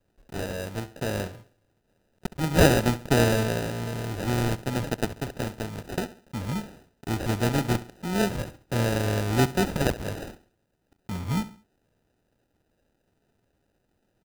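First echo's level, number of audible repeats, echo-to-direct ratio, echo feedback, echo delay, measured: −16.0 dB, 3, −15.5 dB, 37%, 68 ms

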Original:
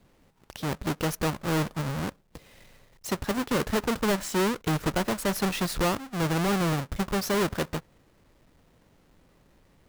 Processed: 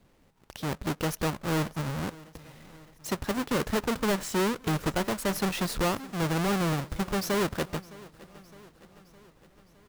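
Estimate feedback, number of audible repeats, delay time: 59%, 4, 612 ms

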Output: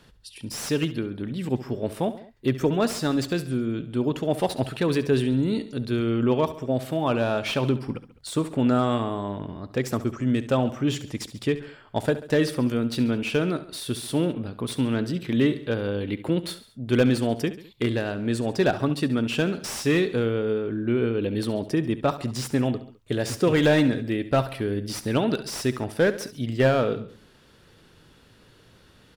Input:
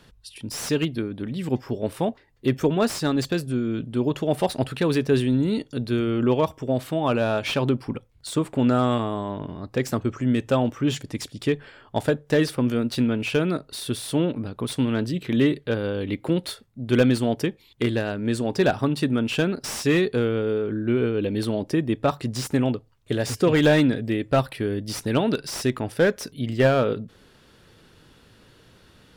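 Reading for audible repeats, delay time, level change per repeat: 3, 69 ms, −5.0 dB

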